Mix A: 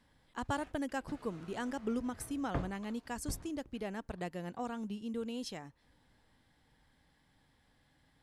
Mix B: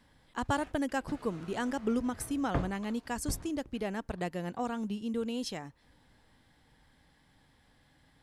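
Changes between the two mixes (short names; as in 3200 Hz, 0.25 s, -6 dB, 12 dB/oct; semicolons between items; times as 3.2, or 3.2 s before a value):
speech +5.0 dB; background +4.5 dB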